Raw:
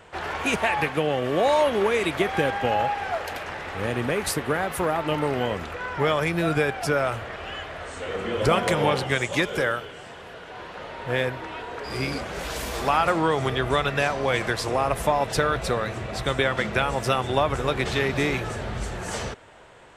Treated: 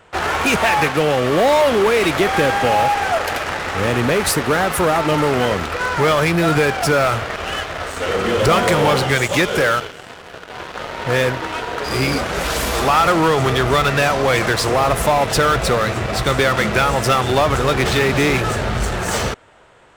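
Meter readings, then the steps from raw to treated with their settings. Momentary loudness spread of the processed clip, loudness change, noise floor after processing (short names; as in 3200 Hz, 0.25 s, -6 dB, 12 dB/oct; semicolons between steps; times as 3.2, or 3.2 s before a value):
9 LU, +8.0 dB, -38 dBFS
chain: bell 1300 Hz +4 dB 0.22 oct; in parallel at -4 dB: fuzz box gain 29 dB, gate -37 dBFS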